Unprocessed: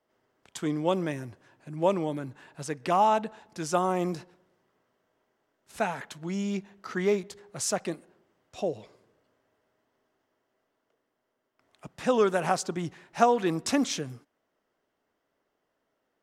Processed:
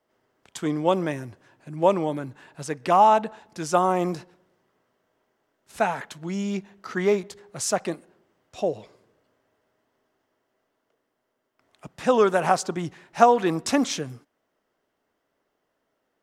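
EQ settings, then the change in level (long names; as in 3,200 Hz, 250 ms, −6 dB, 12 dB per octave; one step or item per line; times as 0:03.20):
dynamic equaliser 890 Hz, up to +4 dB, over −37 dBFS, Q 0.73
+2.5 dB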